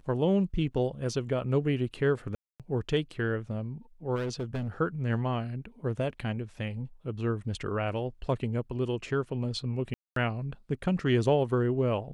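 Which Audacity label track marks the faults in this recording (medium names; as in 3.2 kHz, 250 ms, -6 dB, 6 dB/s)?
2.350000	2.600000	dropout 247 ms
4.150000	4.680000	clipped -28.5 dBFS
9.940000	10.160000	dropout 223 ms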